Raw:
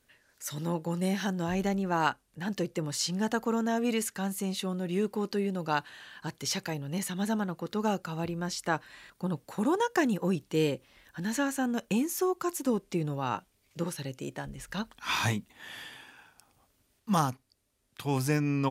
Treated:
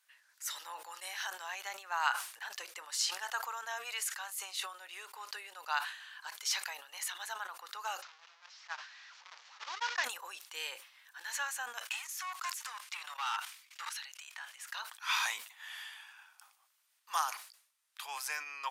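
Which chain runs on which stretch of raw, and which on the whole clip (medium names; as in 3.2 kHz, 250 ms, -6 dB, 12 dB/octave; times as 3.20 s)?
8.02–10.04 s: one-bit delta coder 32 kbps, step -26 dBFS + gate -25 dBFS, range -60 dB + swell ahead of each attack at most 28 dB/s
11.85–14.56 s: level held to a coarse grid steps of 17 dB + overdrive pedal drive 23 dB, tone 4.5 kHz, clips at -20 dBFS + Bessel high-pass 1.1 kHz, order 6
whole clip: inverse Chebyshev high-pass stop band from 160 Hz, stop band 80 dB; decay stretcher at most 99 dB/s; trim -1.5 dB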